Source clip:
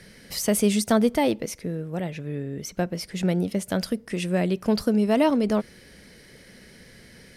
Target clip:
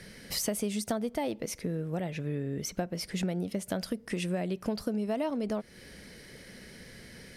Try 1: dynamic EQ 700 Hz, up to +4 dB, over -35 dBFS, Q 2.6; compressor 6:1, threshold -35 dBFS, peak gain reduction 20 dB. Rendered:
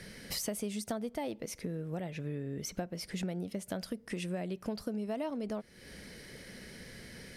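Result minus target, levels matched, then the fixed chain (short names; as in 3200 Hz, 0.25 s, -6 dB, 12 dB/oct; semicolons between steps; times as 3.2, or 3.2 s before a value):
compressor: peak gain reduction +5 dB
dynamic EQ 700 Hz, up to +4 dB, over -35 dBFS, Q 2.6; compressor 6:1, threshold -29 dBFS, peak gain reduction 15 dB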